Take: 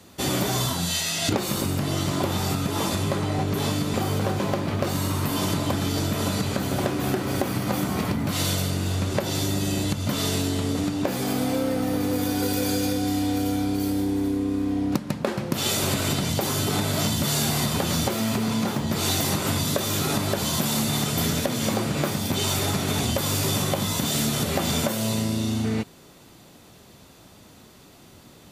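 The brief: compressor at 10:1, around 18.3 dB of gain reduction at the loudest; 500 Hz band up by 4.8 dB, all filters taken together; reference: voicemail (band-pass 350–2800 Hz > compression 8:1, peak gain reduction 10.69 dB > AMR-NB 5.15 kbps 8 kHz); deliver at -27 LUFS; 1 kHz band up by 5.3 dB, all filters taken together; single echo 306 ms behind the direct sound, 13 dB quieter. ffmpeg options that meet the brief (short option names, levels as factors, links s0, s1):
-af "equalizer=f=500:t=o:g=6,equalizer=f=1000:t=o:g=5,acompressor=threshold=0.0178:ratio=10,highpass=350,lowpass=2800,aecho=1:1:306:0.224,acompressor=threshold=0.00794:ratio=8,volume=14.1" -ar 8000 -c:a libopencore_amrnb -b:a 5150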